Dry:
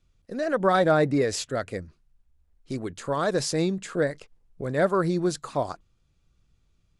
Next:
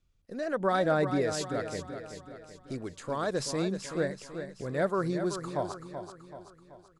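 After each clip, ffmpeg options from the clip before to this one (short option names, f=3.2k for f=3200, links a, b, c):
-af "aecho=1:1:381|762|1143|1524|1905|2286:0.355|0.174|0.0852|0.0417|0.0205|0.01,volume=-6dB"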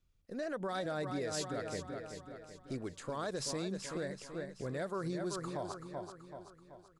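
-filter_complex "[0:a]acrossover=split=3100[a][b];[a]alimiter=level_in=3dB:limit=-24dB:level=0:latency=1:release=104,volume=-3dB[c];[b]volume=27.5dB,asoftclip=hard,volume=-27.5dB[d];[c][d]amix=inputs=2:normalize=0,volume=-3dB"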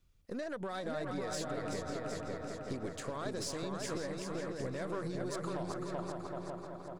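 -filter_complex "[0:a]acompressor=threshold=-42dB:ratio=6,aeval=exprs='0.02*(cos(1*acos(clip(val(0)/0.02,-1,1)))-cos(1*PI/2))+0.00112*(cos(6*acos(clip(val(0)/0.02,-1,1)))-cos(6*PI/2))':c=same,asplit=2[a][b];[b]adelay=548,lowpass=f=2.3k:p=1,volume=-3dB,asplit=2[c][d];[d]adelay=548,lowpass=f=2.3k:p=1,volume=0.49,asplit=2[e][f];[f]adelay=548,lowpass=f=2.3k:p=1,volume=0.49,asplit=2[g][h];[h]adelay=548,lowpass=f=2.3k:p=1,volume=0.49,asplit=2[i][j];[j]adelay=548,lowpass=f=2.3k:p=1,volume=0.49,asplit=2[k][l];[l]adelay=548,lowpass=f=2.3k:p=1,volume=0.49[m];[a][c][e][g][i][k][m]amix=inputs=7:normalize=0,volume=5dB"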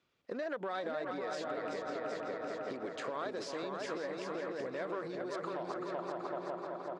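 -af "acompressor=threshold=-39dB:ratio=6,highpass=340,lowpass=3.5k,volume=6.5dB"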